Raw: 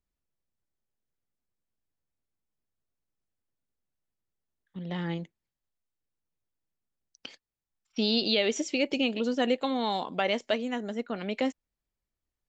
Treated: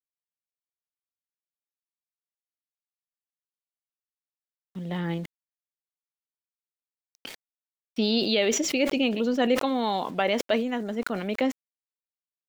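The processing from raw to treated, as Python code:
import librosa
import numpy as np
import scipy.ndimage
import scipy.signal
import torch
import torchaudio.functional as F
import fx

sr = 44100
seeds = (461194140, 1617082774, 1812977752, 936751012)

y = fx.high_shelf(x, sr, hz=5900.0, db=-11.5)
y = np.where(np.abs(y) >= 10.0 ** (-51.5 / 20.0), y, 0.0)
y = fx.sustainer(y, sr, db_per_s=66.0)
y = F.gain(torch.from_numpy(y), 3.0).numpy()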